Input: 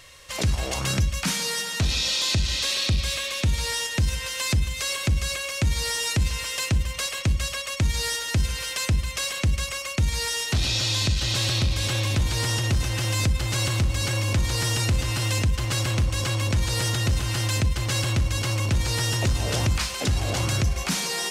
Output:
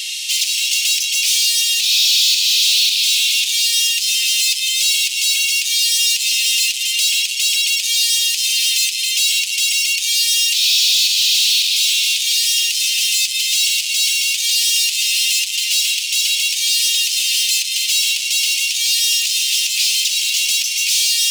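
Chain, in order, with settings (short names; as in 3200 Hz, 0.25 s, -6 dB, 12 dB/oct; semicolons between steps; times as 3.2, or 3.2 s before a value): overdrive pedal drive 28 dB, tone 7600 Hz, clips at -14.5 dBFS; steep high-pass 2600 Hz 48 dB/oct; gain +7 dB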